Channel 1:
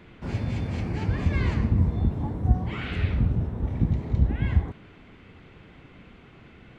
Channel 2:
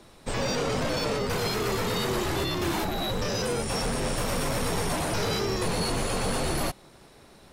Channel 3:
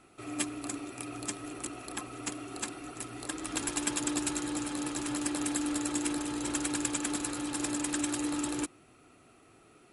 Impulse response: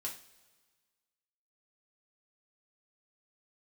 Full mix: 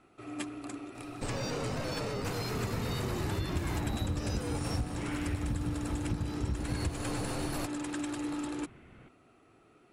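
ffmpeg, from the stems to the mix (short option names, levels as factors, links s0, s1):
-filter_complex "[0:a]lowpass=2900,adelay=2300,volume=0.501[s0];[1:a]equalizer=f=110:t=o:w=0.77:g=7.5,bandreject=f=3300:w=12,acompressor=threshold=0.01:ratio=1.5,adelay=950,volume=2.66,afade=t=out:st=4.76:d=0.28:silence=0.281838,afade=t=in:st=6.42:d=0.5:silence=0.298538[s1];[2:a]lowpass=f=2600:p=1,volume=0.794[s2];[s0][s1][s2]amix=inputs=3:normalize=0,acompressor=threshold=0.0355:ratio=6"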